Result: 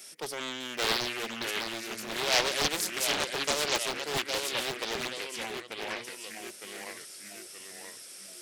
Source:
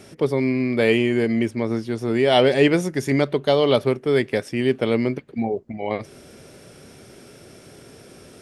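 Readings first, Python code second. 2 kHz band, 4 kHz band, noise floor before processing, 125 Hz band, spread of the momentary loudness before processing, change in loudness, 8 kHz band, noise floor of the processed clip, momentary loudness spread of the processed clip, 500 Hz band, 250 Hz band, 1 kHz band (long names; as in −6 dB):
−4.5 dB, +0.5 dB, −47 dBFS, −21.5 dB, 10 LU, −10.0 dB, +9.5 dB, −47 dBFS, 16 LU, −16.5 dB, −20.5 dB, −6.5 dB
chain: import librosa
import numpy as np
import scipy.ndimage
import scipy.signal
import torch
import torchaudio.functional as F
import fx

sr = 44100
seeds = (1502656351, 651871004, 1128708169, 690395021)

y = np.diff(x, prepend=0.0)
y = fx.echo_pitch(y, sr, ms=605, semitones=-1, count=3, db_per_echo=-6.0)
y = fx.doppler_dist(y, sr, depth_ms=0.74)
y = y * librosa.db_to_amplitude(7.0)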